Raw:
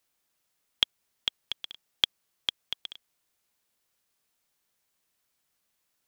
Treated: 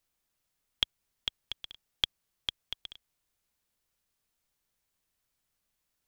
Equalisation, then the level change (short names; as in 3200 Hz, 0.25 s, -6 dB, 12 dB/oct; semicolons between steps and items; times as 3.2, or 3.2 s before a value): low shelf 78 Hz +11 dB; low shelf 160 Hz +4.5 dB; -4.5 dB